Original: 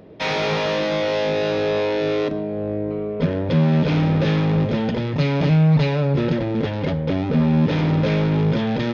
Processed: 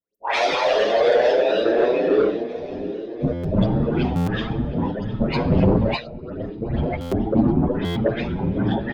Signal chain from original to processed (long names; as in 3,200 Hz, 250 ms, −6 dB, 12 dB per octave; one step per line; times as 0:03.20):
spectral dynamics exaggerated over time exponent 3
dynamic equaliser 520 Hz, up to +4 dB, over −40 dBFS, Q 2.9
random phases in short frames
repeating echo 716 ms, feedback 59%, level −20 dB
four-comb reverb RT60 2.7 s, combs from 27 ms, DRR 15 dB
0:05.93–0:06.92: compressor whose output falls as the input rises −34 dBFS, ratio −0.5
all-pass dispersion highs, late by 149 ms, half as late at 1,800 Hz
sine wavefolder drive 9 dB, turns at −7.5 dBFS
buffer that repeats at 0:03.32/0:04.15/0:07.00/0:07.84, samples 512, times 9
barber-pole flanger 7.4 ms +1.4 Hz
level −2 dB